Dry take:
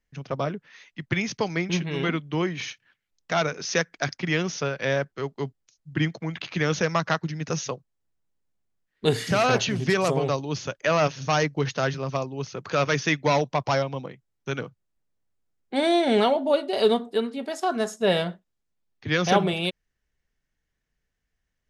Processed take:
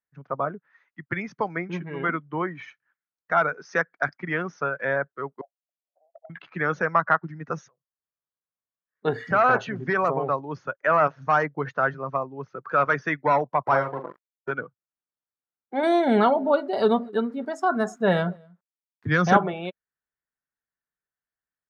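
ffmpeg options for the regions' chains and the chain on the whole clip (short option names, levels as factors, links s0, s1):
-filter_complex "[0:a]asettb=1/sr,asplit=3[s0][s1][s2];[s0]atrim=end=5.414[s3];[s1]atrim=start=5.41:end=6.3,asetpts=PTS-STARTPTS,afade=t=in:d=0.004:c=qsin,afade=t=out:st=0.886:d=0.004:c=qsin,asuperpass=centerf=650:order=8:qfactor=2.9,aeval=exprs='clip(val(0),-1,0.0133)':c=same[s4];[s2]atrim=start=6.296[s5];[s3][s4]acrossfade=d=0.004:c1=hsin:c2=qsin[s6];[s6][s5]acrossfade=d=0.004:c1=qsin:c2=hsin,asettb=1/sr,asplit=3[s7][s8][s9];[s7]atrim=end=7.684[s10];[s8]atrim=start=7.68:end=9.05,asetpts=PTS-STARTPTS,afade=t=in:d=0.004:c=qsin,afade=t=out:st=1.366:d=0.004:c=qsin,aecho=1:1:1.8:0.37,atrim=end_sample=60417,acompressor=threshold=0.00251:ratio=10:attack=3.2:release=140:knee=1:detection=peak[s11];[s9]atrim=start=9.046[s12];[s10][s11]acrossfade=d=0.004:c1=hsin:c2=qsin[s13];[s13][s12]acrossfade=d=0.004:c1=qsin:c2=hsin,asettb=1/sr,asplit=3[s14][s15][s16];[s14]atrim=end=13.664[s17];[s15]atrim=start=13.66:end=14.51,asetpts=PTS-STARTPTS,afade=t=in:d=0.004:c=qsin,afade=t=out:st=0.846:d=0.004:c=qsin,equalizer=f=380:t=o:w=0.26:g=11.5,acrusher=bits=4:mix=0:aa=0.5,asplit=2[s18][s19];[s19]adelay=43,volume=0.473[s20];[s18][s20]amix=inputs=2:normalize=0,atrim=end_sample=37485[s21];[s16]atrim=start=14.506[s22];[s17][s21]acrossfade=d=0.004:c1=hsin:c2=qsin[s23];[s23][s22]acrossfade=d=0.004:c1=qsin:c2=hsin,asettb=1/sr,asplit=3[s24][s25][s26];[s24]atrim=end=15.834[s27];[s25]atrim=start=15.83:end=19.37,asetpts=PTS-STARTPTS,afade=t=in:d=0.004:c=qsin,afade=t=out:st=3.536:d=0.004:c=qsin,bass=f=250:g=13,treble=f=4000:g=14,aeval=exprs='val(0)*gte(abs(val(0)),0.01)':c=same,aecho=1:1:239:0.0708,atrim=end_sample=156114[s28];[s26]atrim=start=19.366[s29];[s27][s28]acrossfade=d=0.004:c1=hsin:c2=qsin[s30];[s30][s29]acrossfade=d=0.004:c1=qsin:c2=hsin,highpass=f=210:p=1,afftdn=nr=13:nf=-33,firequalizer=gain_entry='entry(420,0);entry(870,6);entry(1400,10);entry(2700,-10);entry(5200,-15);entry(9700,-20)':delay=0.05:min_phase=1,volume=0.794"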